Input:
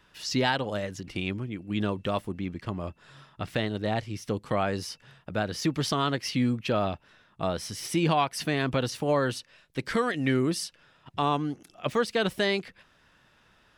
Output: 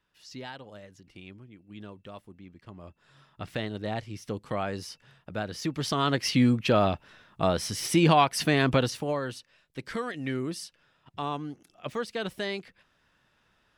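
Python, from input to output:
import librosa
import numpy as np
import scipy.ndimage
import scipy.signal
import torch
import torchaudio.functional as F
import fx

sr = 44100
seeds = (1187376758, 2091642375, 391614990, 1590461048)

y = fx.gain(x, sr, db=fx.line((2.52, -15.5), (3.44, -4.0), (5.74, -4.0), (6.23, 4.0), (8.76, 4.0), (9.2, -6.5)))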